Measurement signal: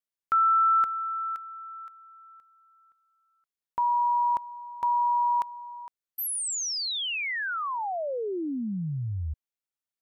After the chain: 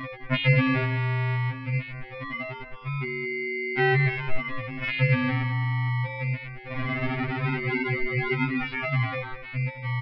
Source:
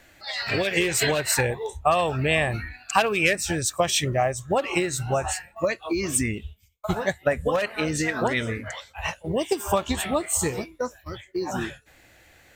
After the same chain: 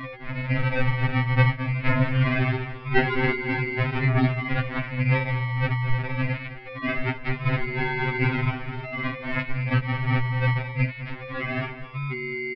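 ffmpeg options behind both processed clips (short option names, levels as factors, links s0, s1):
-filter_complex "[0:a]asplit=2[s0][s1];[s1]acompressor=threshold=0.02:ratio=6,volume=0.794[s2];[s0][s2]amix=inputs=2:normalize=0,aeval=exprs='val(0)+0.0447*sin(2*PI*1600*n/s)':c=same,aresample=11025,acrusher=samples=25:mix=1:aa=0.000001:lfo=1:lforange=15:lforate=0.22,aresample=44100,lowpass=f=2200:t=q:w=4.1,aecho=1:1:213|426:0.224|0.0403,afftfilt=real='re*2.45*eq(mod(b,6),0)':imag='im*2.45*eq(mod(b,6),0)':win_size=2048:overlap=0.75"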